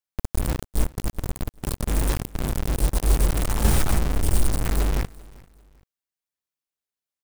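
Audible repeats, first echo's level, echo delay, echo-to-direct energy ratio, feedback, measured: 2, -22.5 dB, 392 ms, -22.0 dB, 31%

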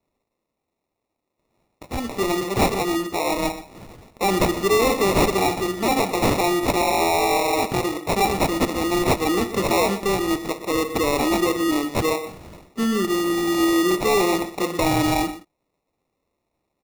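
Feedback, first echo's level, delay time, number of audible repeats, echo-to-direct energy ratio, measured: no regular repeats, -14.0 dB, 122 ms, 1, -14.0 dB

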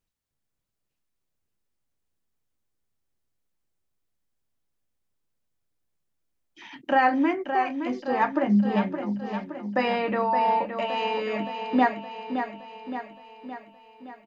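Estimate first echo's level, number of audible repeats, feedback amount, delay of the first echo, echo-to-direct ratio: -8.0 dB, 6, 57%, 568 ms, -6.5 dB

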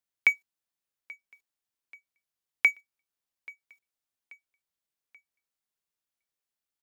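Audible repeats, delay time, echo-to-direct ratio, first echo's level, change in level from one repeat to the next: 2, 833 ms, -22.0 dB, -23.0 dB, -6.5 dB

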